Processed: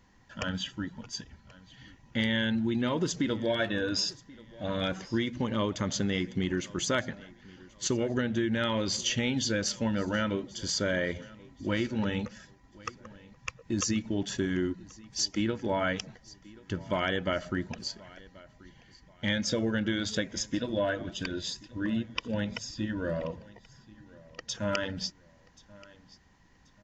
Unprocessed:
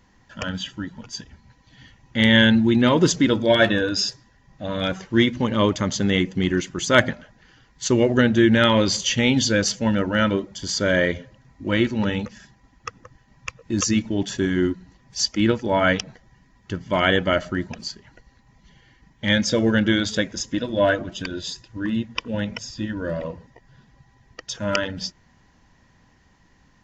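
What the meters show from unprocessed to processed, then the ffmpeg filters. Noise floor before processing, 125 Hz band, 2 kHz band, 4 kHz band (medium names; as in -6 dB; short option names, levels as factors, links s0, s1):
-58 dBFS, -9.5 dB, -11.0 dB, -9.0 dB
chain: -filter_complex "[0:a]acompressor=threshold=0.0891:ratio=6,asplit=2[s0][s1];[s1]aecho=0:1:1082|2164:0.0794|0.027[s2];[s0][s2]amix=inputs=2:normalize=0,volume=0.596"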